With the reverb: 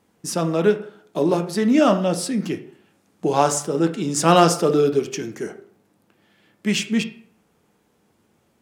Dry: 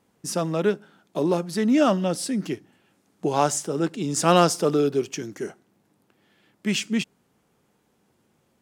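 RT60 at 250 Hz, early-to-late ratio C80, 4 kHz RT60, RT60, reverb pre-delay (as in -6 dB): 0.55 s, 16.0 dB, 0.40 s, 0.55 s, 7 ms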